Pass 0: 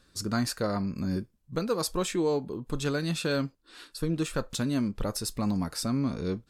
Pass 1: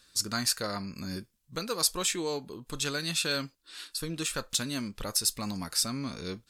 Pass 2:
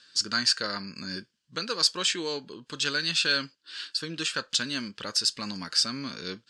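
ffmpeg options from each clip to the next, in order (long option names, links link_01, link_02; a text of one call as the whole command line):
ffmpeg -i in.wav -af "tiltshelf=frequency=1400:gain=-8" out.wav
ffmpeg -i in.wav -af "highpass=160,equalizer=frequency=730:width_type=q:width=4:gain=-6,equalizer=frequency=1600:width_type=q:width=4:gain=9,equalizer=frequency=3000:width_type=q:width=4:gain=9,equalizer=frequency=4700:width_type=q:width=4:gain=8,lowpass=frequency=7500:width=0.5412,lowpass=frequency=7500:width=1.3066" out.wav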